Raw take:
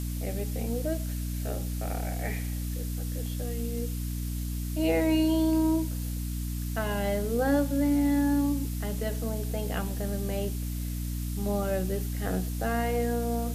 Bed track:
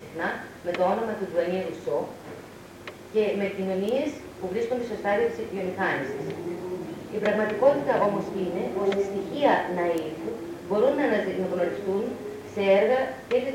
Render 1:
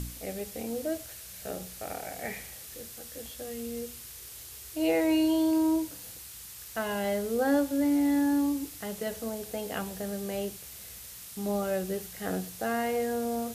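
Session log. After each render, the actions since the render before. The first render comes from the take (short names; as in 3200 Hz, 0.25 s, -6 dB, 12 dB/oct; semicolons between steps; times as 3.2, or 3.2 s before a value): de-hum 60 Hz, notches 5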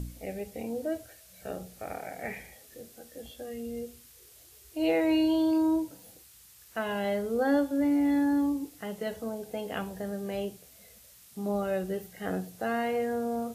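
noise print and reduce 10 dB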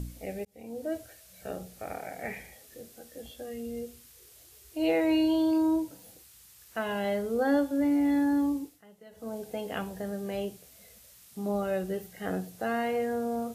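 0.45–0.96 fade in linear; 8.57–9.36 dip -18 dB, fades 0.25 s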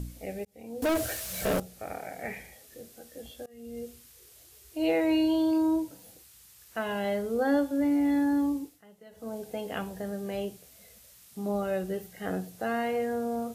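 0.82–1.6 sample leveller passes 5; 3.46–3.87 fade in, from -24 dB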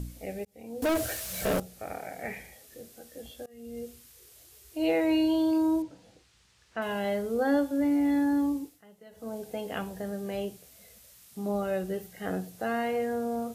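5.82–6.82 air absorption 120 m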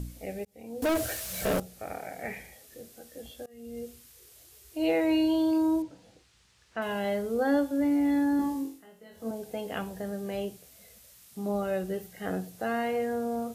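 8.37–9.31 flutter echo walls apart 3.8 m, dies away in 0.38 s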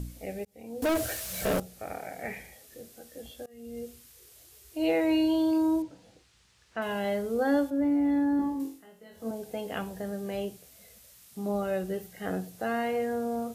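7.7–8.6 high shelf 2400 Hz -11.5 dB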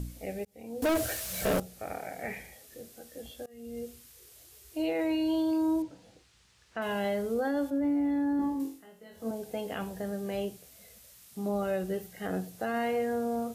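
limiter -23 dBFS, peak gain reduction 7 dB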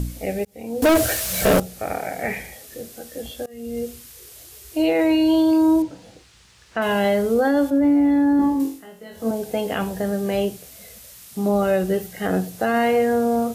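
gain +11.5 dB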